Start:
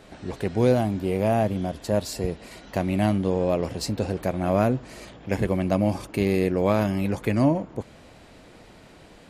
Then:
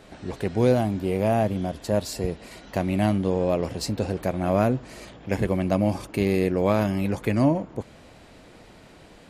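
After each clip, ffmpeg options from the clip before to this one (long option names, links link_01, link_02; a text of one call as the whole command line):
ffmpeg -i in.wav -af anull out.wav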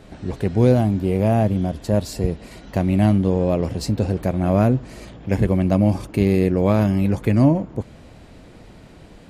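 ffmpeg -i in.wav -af "lowshelf=frequency=290:gain=9.5" out.wav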